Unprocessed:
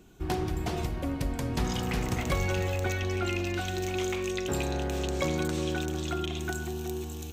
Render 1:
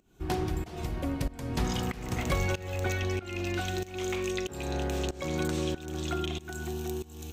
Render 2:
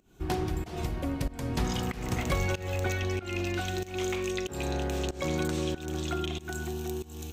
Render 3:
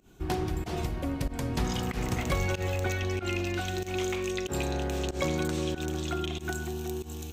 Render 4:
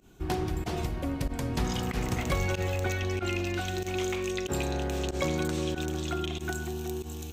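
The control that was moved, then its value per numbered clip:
pump, release: 413, 277, 113, 67 ms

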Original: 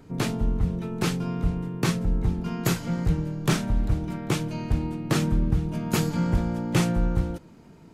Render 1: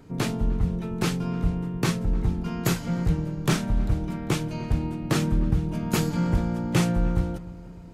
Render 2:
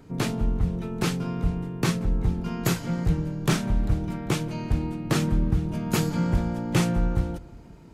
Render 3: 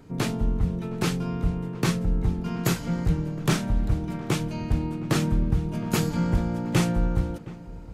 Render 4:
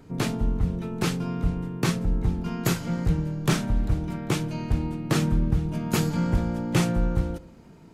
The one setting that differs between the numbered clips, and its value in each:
darkening echo, time: 302, 179, 715, 65 ms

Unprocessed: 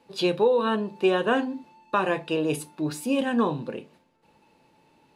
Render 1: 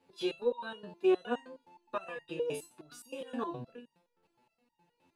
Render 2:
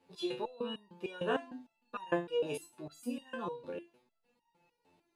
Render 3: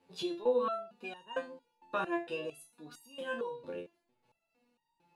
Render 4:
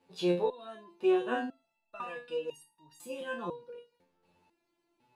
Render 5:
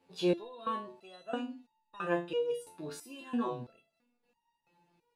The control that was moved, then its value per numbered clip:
stepped resonator, rate: 9.6, 6.6, 4.4, 2, 3 Hz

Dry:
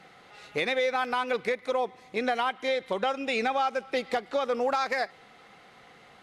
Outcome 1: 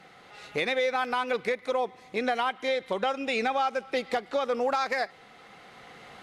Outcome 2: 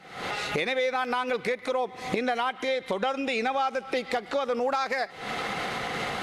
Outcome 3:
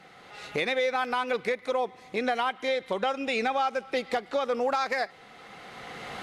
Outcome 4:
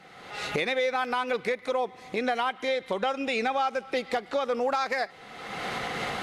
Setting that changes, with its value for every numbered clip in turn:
recorder AGC, rising by: 5.6, 89, 14, 35 dB/s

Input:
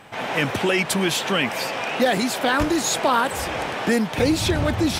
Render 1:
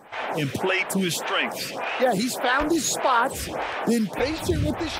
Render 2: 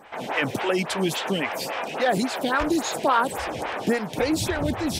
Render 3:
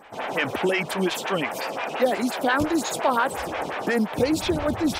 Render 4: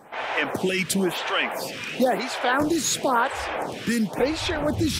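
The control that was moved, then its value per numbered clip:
photocell phaser, rate: 1.7, 3.6, 5.7, 0.97 Hz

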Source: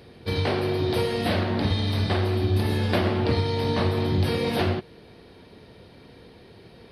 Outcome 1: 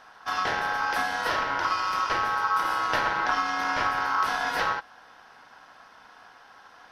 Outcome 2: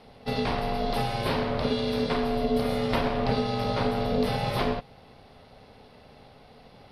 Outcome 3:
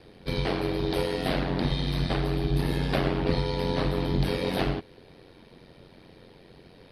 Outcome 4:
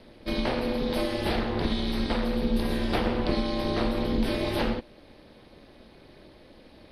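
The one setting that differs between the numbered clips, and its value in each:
ring modulator, frequency: 1200, 340, 45, 130 Hz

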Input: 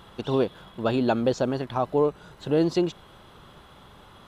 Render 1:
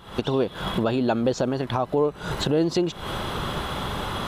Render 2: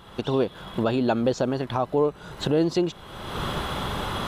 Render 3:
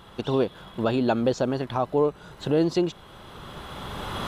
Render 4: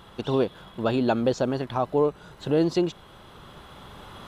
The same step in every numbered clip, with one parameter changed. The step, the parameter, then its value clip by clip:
recorder AGC, rising by: 90, 37, 14, 5.2 dB/s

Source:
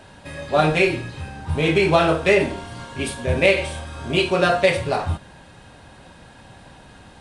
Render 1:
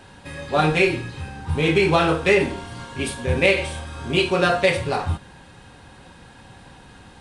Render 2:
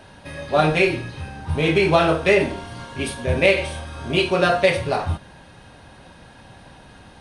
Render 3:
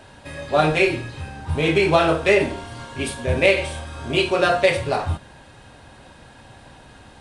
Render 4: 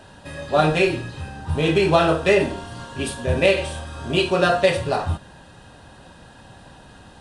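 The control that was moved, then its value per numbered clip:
notch, frequency: 630, 7500, 180, 2200 Hz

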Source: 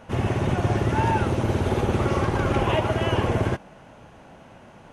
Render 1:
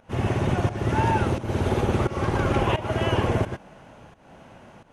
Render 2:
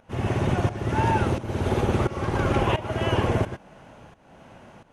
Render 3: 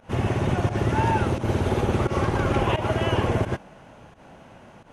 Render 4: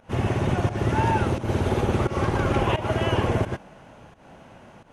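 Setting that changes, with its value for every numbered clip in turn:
pump, release: 0.309, 0.467, 0.123, 0.201 s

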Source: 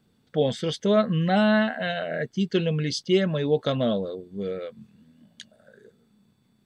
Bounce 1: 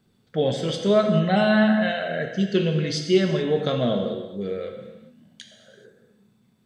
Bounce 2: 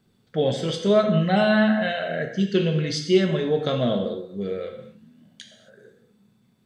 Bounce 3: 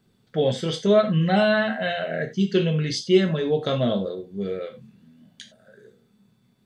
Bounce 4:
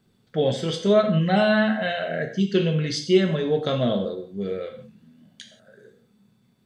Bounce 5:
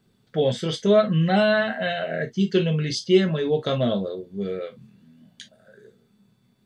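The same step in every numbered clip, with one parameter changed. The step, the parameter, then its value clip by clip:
non-linear reverb, gate: 460, 300, 120, 200, 80 ms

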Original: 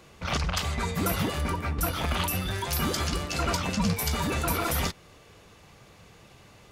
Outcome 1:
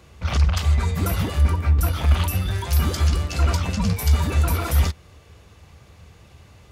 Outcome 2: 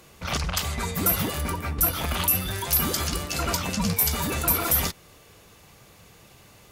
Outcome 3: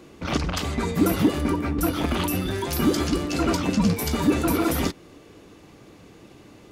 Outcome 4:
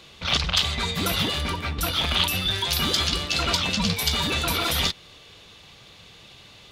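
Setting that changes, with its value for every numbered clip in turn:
bell, frequency: 73, 16000, 300, 3600 Hz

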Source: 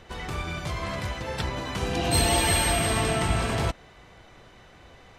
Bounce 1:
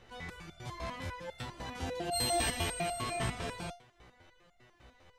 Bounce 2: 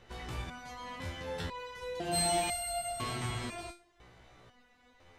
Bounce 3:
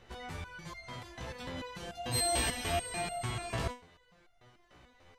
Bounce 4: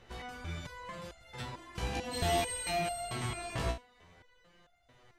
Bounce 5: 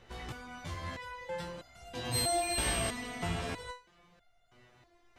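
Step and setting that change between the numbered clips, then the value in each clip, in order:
stepped resonator, rate: 10, 2, 6.8, 4.5, 3.1 Hz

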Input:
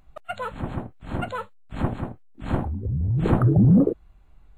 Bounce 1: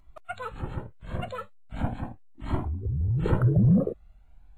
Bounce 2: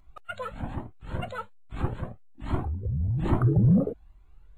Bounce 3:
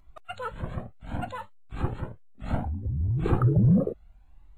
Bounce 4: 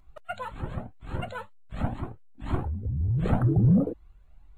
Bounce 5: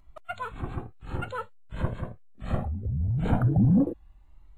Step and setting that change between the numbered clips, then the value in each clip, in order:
cascading flanger, rate: 0.4, 1.2, 0.66, 2, 0.22 Hz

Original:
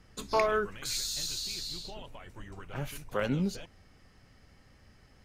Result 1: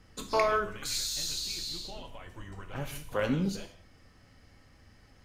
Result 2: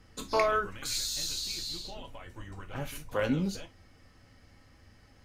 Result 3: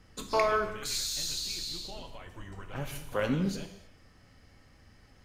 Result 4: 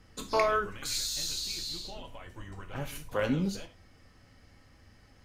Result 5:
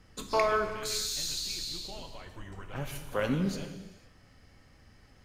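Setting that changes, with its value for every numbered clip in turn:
non-linear reverb, gate: 210, 80, 340, 130, 530 ms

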